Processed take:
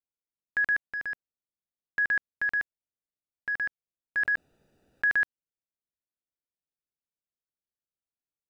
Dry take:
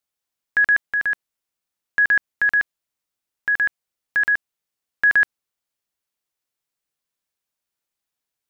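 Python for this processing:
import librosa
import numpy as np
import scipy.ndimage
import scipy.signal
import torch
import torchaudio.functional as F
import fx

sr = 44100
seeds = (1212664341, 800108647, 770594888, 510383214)

y = fx.wiener(x, sr, points=41)
y = fx.env_flatten(y, sr, amount_pct=50, at=(4.17, 5.12))
y = y * librosa.db_to_amplitude(-8.0)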